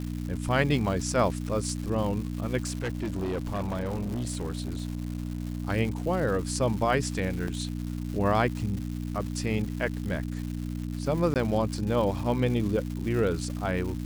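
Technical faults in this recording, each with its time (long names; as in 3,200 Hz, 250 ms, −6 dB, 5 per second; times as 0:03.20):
surface crackle 330 per second −35 dBFS
mains hum 60 Hz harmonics 5 −33 dBFS
0:02.65–0:05.62: clipping −26.5 dBFS
0:07.48: drop-out 2.4 ms
0:11.34–0:11.36: drop-out 18 ms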